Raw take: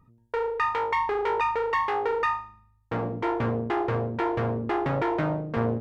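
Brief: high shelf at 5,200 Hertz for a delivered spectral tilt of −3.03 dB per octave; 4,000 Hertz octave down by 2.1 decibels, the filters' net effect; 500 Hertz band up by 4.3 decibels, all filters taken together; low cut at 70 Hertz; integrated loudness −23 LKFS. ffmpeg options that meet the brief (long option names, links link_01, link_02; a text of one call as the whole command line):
ffmpeg -i in.wav -af "highpass=70,equalizer=frequency=500:width_type=o:gain=5,equalizer=frequency=4000:width_type=o:gain=-6,highshelf=frequency=5200:gain=7.5,volume=2dB" out.wav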